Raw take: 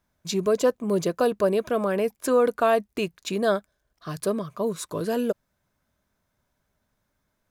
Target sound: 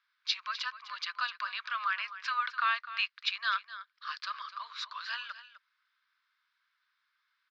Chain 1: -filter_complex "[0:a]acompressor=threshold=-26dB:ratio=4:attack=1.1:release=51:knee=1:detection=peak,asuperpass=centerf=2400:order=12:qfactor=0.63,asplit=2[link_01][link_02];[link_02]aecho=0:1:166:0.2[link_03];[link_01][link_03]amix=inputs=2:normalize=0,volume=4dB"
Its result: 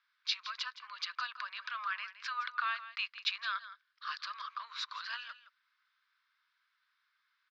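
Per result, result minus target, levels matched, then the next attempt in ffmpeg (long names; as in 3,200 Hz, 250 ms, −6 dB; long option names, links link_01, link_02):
echo 88 ms early; downward compressor: peak gain reduction +6 dB
-filter_complex "[0:a]acompressor=threshold=-26dB:ratio=4:attack=1.1:release=51:knee=1:detection=peak,asuperpass=centerf=2400:order=12:qfactor=0.63,asplit=2[link_01][link_02];[link_02]aecho=0:1:254:0.2[link_03];[link_01][link_03]amix=inputs=2:normalize=0,volume=4dB"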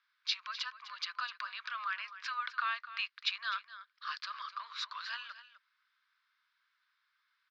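downward compressor: peak gain reduction +6 dB
-filter_complex "[0:a]acompressor=threshold=-18dB:ratio=4:attack=1.1:release=51:knee=1:detection=peak,asuperpass=centerf=2400:order=12:qfactor=0.63,asplit=2[link_01][link_02];[link_02]aecho=0:1:254:0.2[link_03];[link_01][link_03]amix=inputs=2:normalize=0,volume=4dB"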